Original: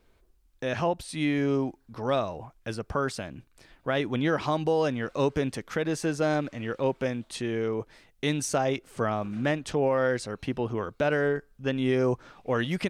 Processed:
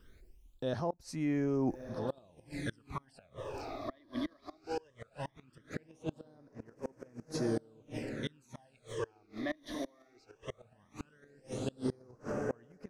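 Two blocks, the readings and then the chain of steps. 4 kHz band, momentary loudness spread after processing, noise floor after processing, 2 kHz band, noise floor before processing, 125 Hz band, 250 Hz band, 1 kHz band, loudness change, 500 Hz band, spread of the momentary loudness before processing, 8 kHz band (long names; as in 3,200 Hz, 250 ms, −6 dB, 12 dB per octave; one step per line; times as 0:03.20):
−12.5 dB, 17 LU, −68 dBFS, −15.5 dB, −64 dBFS, −11.0 dB, −9.0 dB, −13.5 dB, −11.0 dB, −13.0 dB, 9 LU, −14.0 dB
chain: reversed playback
downward compressor 10 to 1, threshold −34 dBFS, peak gain reduction 14 dB
reversed playback
feedback delay with all-pass diffusion 1,462 ms, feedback 40%, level −4 dB
gate with flip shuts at −27 dBFS, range −29 dB
all-pass phaser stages 12, 0.18 Hz, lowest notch 140–3,600 Hz
level +4.5 dB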